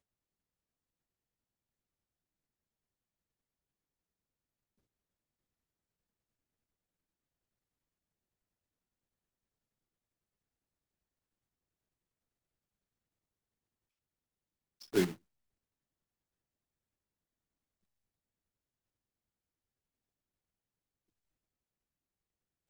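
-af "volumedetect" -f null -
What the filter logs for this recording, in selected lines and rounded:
mean_volume: -49.9 dB
max_volume: -18.4 dB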